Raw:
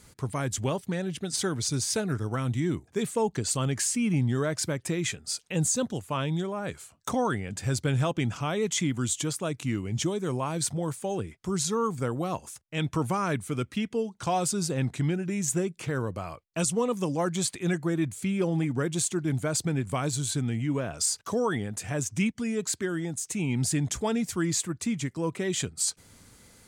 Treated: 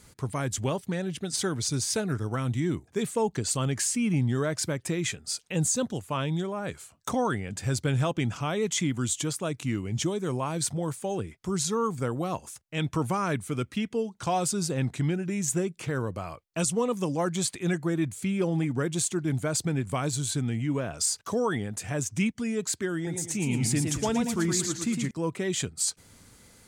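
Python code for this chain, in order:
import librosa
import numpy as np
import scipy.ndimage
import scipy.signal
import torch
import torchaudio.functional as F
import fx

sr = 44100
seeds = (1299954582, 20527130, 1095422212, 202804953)

y = fx.echo_warbled(x, sr, ms=113, feedback_pct=43, rate_hz=2.8, cents=140, wet_db=-5.0, at=(22.95, 25.11))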